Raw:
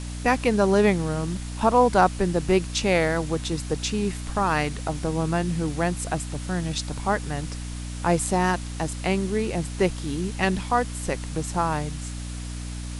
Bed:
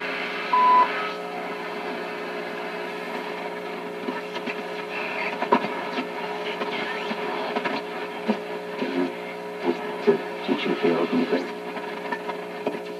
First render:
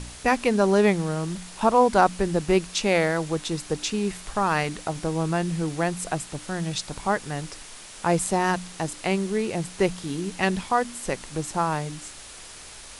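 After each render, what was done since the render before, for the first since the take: de-hum 60 Hz, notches 5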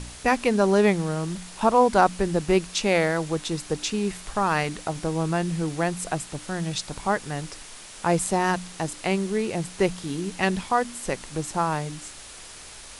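no audible change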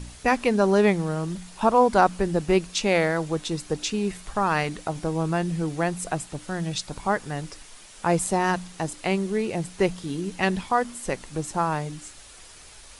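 noise reduction 6 dB, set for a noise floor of -43 dBFS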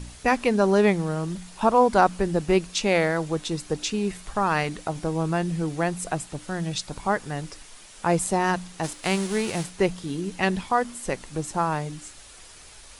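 8.83–9.69 s: formants flattened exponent 0.6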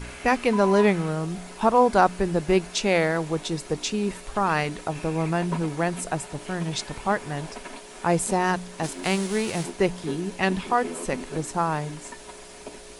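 add bed -13.5 dB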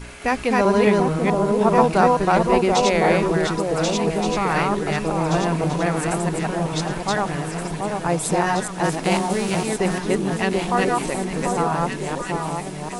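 chunks repeated in reverse 217 ms, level -0.5 dB; echo whose repeats swap between lows and highs 736 ms, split 1.1 kHz, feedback 63%, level -3 dB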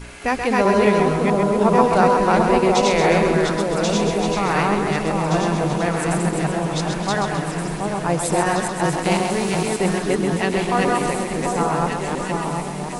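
two-band feedback delay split 300 Hz, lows 770 ms, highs 131 ms, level -6 dB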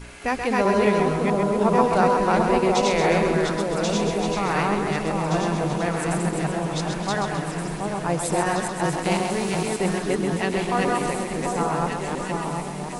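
trim -3.5 dB

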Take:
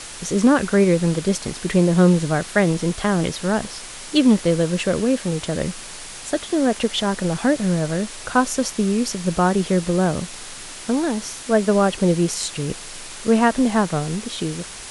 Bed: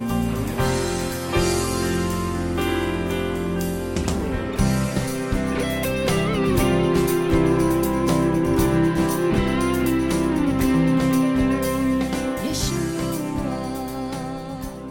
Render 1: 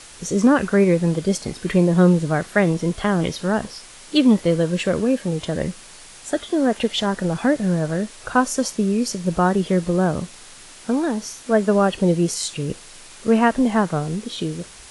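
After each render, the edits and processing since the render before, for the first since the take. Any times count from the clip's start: noise print and reduce 7 dB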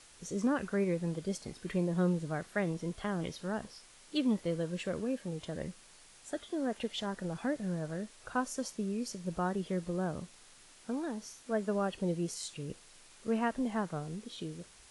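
trim -15.5 dB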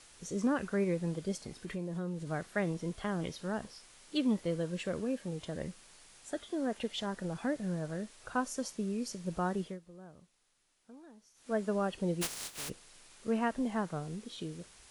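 1.32–2.27 s: compression 2.5:1, threshold -37 dBFS; 9.61–11.52 s: dip -17.5 dB, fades 0.18 s; 12.21–12.68 s: spectral contrast reduction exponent 0.18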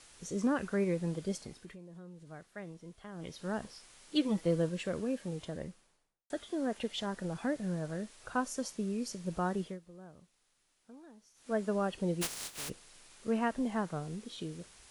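1.38–3.51 s: dip -12.5 dB, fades 0.39 s linear; 4.15–4.69 s: comb 6.1 ms, depth 66%; 5.31–6.30 s: studio fade out

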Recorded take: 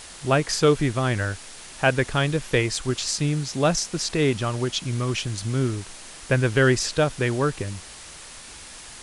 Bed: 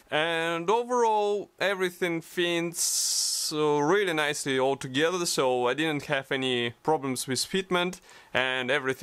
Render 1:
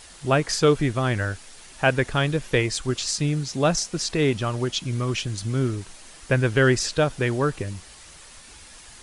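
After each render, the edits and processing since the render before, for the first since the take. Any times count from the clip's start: noise reduction 6 dB, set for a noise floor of -42 dBFS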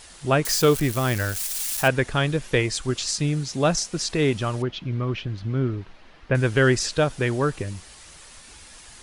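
0.45–1.88 s: zero-crossing glitches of -21.5 dBFS; 4.62–6.35 s: distance through air 310 m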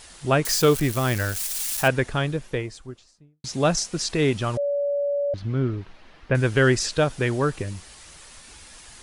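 1.77–3.44 s: studio fade out; 4.57–5.34 s: bleep 571 Hz -21 dBFS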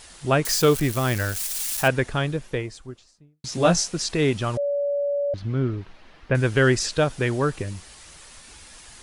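3.50–3.92 s: doubling 17 ms -2 dB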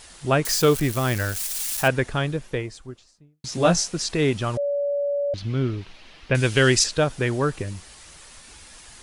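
4.92–6.84 s: high-order bell 5.3 kHz +8.5 dB 2.7 oct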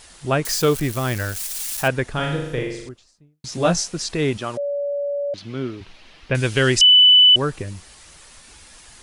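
2.12–2.89 s: flutter echo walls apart 6.9 m, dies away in 0.81 s; 4.37–5.81 s: high-pass 200 Hz; 6.81–7.36 s: bleep 2.99 kHz -7.5 dBFS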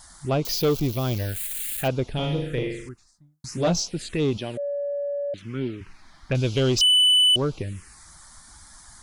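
touch-sensitive phaser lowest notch 420 Hz, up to 1.8 kHz, full sweep at -18.5 dBFS; saturation -14.5 dBFS, distortion -14 dB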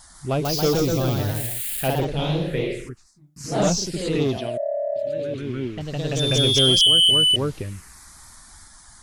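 ever faster or slower copies 156 ms, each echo +1 st, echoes 3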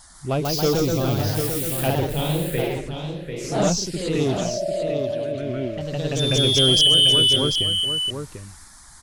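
delay 744 ms -7 dB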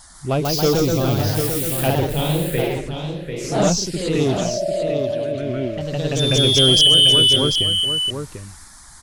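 trim +3 dB

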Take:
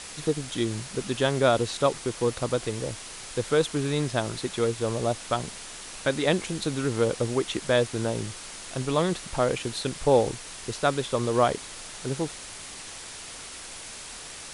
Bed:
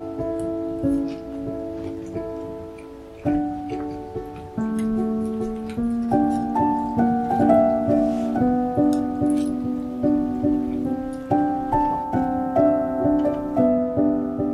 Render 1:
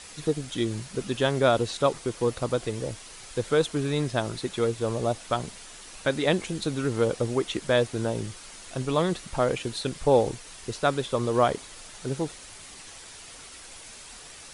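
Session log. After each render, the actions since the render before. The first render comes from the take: noise reduction 6 dB, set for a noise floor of -41 dBFS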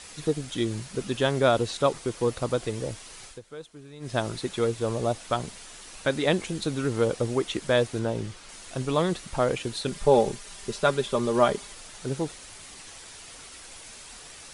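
3.25–4.15 s: dip -18.5 dB, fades 0.15 s; 7.99–8.49 s: treble shelf 7.9 kHz -11.5 dB; 9.88–11.73 s: comb 5 ms, depth 58%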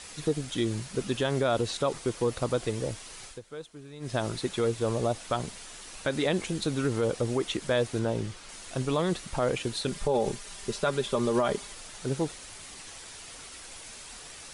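peak limiter -17 dBFS, peak gain reduction 9.5 dB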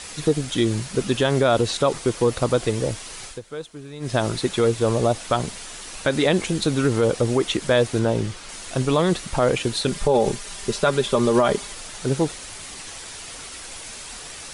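trim +8 dB

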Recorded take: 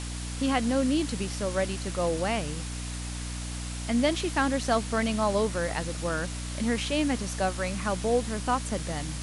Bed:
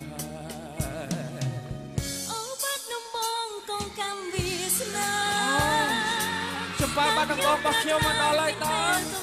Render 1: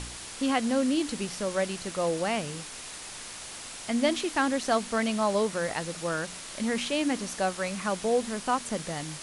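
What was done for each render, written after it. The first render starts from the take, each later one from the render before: de-hum 60 Hz, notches 5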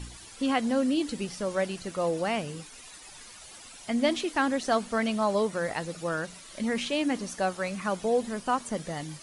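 noise reduction 12 dB, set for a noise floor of -42 dBFS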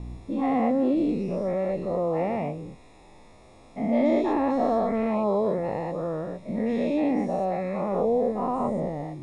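every event in the spectrogram widened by 240 ms; boxcar filter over 29 samples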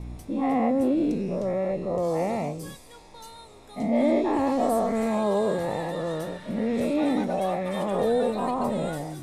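add bed -16.5 dB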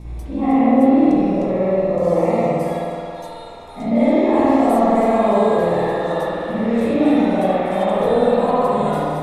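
band-passed feedback delay 377 ms, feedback 46%, band-pass 1 kHz, level -5 dB; spring tank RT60 1.6 s, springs 52 ms, chirp 25 ms, DRR -7 dB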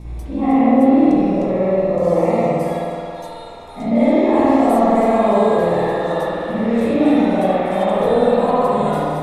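trim +1 dB; peak limiter -2 dBFS, peak gain reduction 1 dB

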